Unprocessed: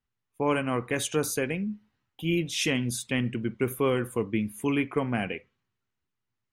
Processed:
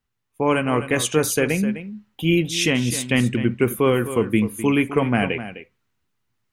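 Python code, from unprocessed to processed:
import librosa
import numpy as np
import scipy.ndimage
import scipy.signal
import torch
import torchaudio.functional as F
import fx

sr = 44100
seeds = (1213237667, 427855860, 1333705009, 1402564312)

y = x + 10.0 ** (-13.0 / 20.0) * np.pad(x, (int(256 * sr / 1000.0), 0))[:len(x)]
y = fx.rider(y, sr, range_db=10, speed_s=0.5)
y = F.gain(torch.from_numpy(y), 8.0).numpy()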